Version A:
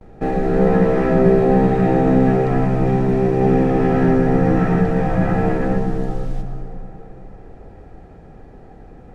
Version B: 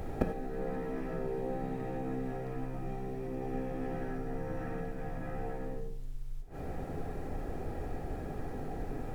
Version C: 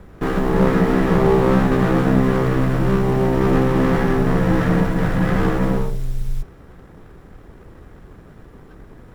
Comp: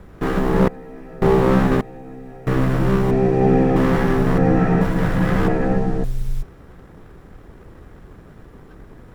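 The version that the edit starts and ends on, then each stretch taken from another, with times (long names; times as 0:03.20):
C
0:00.68–0:01.22: punch in from B
0:01.81–0:02.47: punch in from B
0:03.11–0:03.76: punch in from A
0:04.38–0:04.81: punch in from A
0:05.48–0:06.04: punch in from A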